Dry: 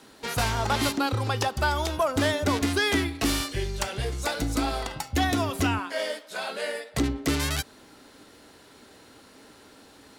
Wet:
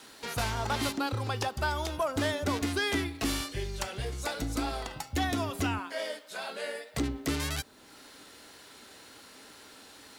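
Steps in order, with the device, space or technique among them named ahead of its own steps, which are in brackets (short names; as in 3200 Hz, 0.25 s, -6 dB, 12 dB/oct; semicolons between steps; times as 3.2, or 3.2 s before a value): noise-reduction cassette on a plain deck (mismatched tape noise reduction encoder only; wow and flutter 28 cents; white noise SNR 39 dB); gain -5.5 dB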